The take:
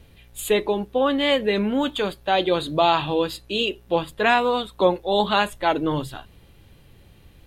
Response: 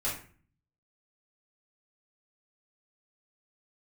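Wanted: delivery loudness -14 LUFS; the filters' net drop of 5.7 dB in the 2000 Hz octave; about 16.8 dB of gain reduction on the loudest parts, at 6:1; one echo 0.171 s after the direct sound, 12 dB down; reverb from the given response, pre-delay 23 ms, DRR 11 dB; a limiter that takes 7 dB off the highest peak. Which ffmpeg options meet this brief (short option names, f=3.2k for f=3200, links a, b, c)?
-filter_complex "[0:a]equalizer=f=2k:t=o:g=-8,acompressor=threshold=-34dB:ratio=6,alimiter=level_in=4.5dB:limit=-24dB:level=0:latency=1,volume=-4.5dB,aecho=1:1:171:0.251,asplit=2[a][b];[1:a]atrim=start_sample=2205,adelay=23[c];[b][c]afir=irnorm=-1:irlink=0,volume=-17dB[d];[a][d]amix=inputs=2:normalize=0,volume=24.5dB"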